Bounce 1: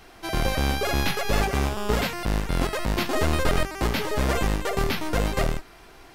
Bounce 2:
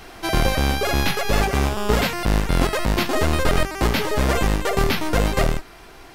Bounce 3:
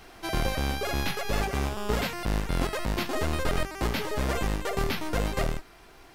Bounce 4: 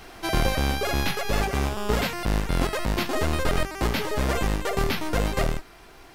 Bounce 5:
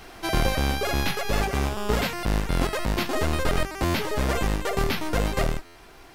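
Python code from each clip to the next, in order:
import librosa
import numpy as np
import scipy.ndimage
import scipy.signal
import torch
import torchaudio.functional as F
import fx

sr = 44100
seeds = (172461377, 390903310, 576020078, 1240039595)

y1 = fx.rider(x, sr, range_db=10, speed_s=0.5)
y1 = y1 * 10.0 ** (4.5 / 20.0)
y2 = fx.dmg_crackle(y1, sr, seeds[0], per_s=360.0, level_db=-46.0)
y2 = y2 * 10.0 ** (-8.5 / 20.0)
y3 = fx.rider(y2, sr, range_db=10, speed_s=2.0)
y3 = y3 * 10.0 ** (3.5 / 20.0)
y4 = fx.buffer_glitch(y3, sr, at_s=(3.84, 5.65), block=512, repeats=8)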